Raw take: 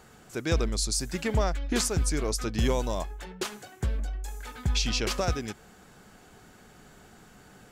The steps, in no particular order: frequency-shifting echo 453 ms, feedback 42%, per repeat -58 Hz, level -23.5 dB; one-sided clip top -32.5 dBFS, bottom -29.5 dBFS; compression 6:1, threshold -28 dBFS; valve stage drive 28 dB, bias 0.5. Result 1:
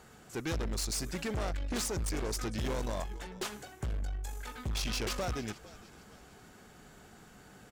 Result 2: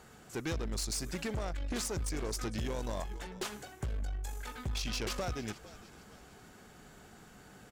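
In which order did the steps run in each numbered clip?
frequency-shifting echo > valve stage > compression > one-sided clip; frequency-shifting echo > compression > valve stage > one-sided clip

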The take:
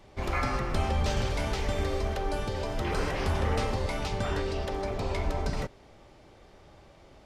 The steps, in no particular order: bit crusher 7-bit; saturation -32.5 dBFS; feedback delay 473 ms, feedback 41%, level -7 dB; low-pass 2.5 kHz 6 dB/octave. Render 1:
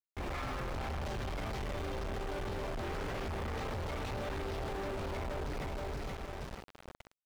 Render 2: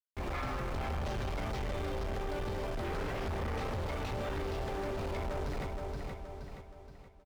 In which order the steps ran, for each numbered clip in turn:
feedback delay > saturation > bit crusher > low-pass; bit crusher > feedback delay > saturation > low-pass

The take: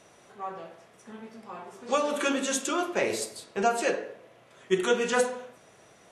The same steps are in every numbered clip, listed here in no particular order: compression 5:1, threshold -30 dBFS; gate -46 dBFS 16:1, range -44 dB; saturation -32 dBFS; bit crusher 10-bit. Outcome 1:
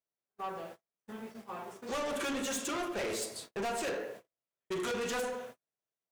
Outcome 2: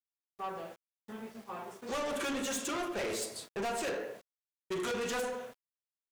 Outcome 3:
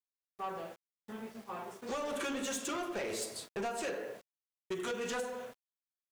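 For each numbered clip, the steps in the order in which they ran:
bit crusher > gate > saturation > compression; gate > bit crusher > saturation > compression; gate > compression > bit crusher > saturation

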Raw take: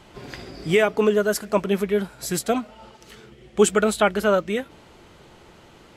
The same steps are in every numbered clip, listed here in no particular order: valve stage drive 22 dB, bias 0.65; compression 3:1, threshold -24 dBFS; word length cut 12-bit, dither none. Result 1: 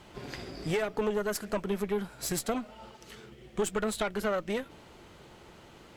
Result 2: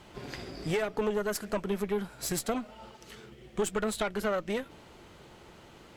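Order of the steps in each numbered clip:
compression > word length cut > valve stage; word length cut > compression > valve stage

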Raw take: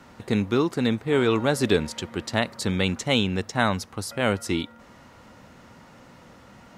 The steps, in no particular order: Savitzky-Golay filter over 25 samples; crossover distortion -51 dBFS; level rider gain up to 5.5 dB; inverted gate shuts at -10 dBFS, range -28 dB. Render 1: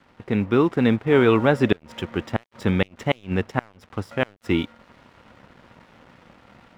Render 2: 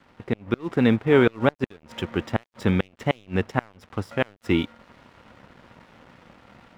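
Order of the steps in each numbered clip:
Savitzky-Golay filter > inverted gate > crossover distortion > level rider; inverted gate > Savitzky-Golay filter > crossover distortion > level rider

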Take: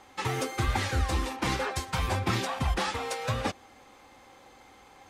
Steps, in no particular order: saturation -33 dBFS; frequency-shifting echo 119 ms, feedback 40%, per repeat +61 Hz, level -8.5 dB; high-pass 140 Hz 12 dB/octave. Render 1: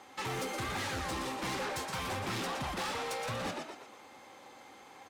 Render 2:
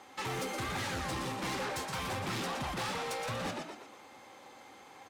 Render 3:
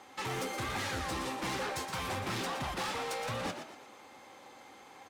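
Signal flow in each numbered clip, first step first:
high-pass > frequency-shifting echo > saturation; frequency-shifting echo > high-pass > saturation; high-pass > saturation > frequency-shifting echo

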